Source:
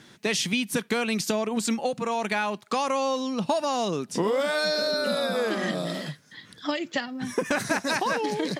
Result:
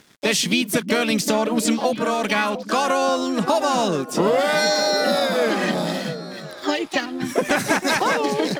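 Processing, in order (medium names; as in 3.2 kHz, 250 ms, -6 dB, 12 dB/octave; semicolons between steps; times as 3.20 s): harmony voices +5 st -6 dB; crossover distortion -50.5 dBFS; repeats whose band climbs or falls 351 ms, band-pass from 190 Hz, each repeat 1.4 oct, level -8 dB; trim +5.5 dB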